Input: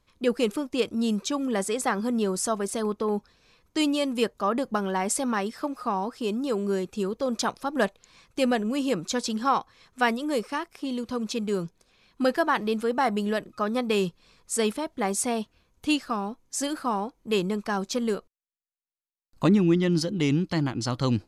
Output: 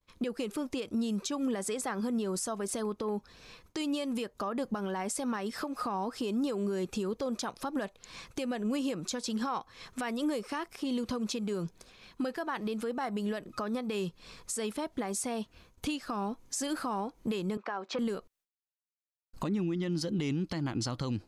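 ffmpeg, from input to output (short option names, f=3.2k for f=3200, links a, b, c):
-filter_complex "[0:a]asettb=1/sr,asplit=3[a][b][c];[a]atrim=end=17.574[d];[b]atrim=start=17.57:end=17.99,asetpts=PTS-STARTPTS,afade=t=in:d=0.004:c=qsin,afade=t=out:st=0.416:d=0.004:c=qsin,highpass=500,lowpass=2.1k[e];[c]atrim=start=17.986[f];[d][e]acrossfade=d=0.004:c1=hsin:c2=qsin[g];[g][f]acrossfade=d=0.004:c1=qsin:c2=hsin,agate=range=-33dB:threshold=-58dB:ratio=3:detection=peak,acompressor=threshold=-35dB:ratio=5,alimiter=level_in=9dB:limit=-24dB:level=0:latency=1:release=162,volume=-9dB,volume=8.5dB"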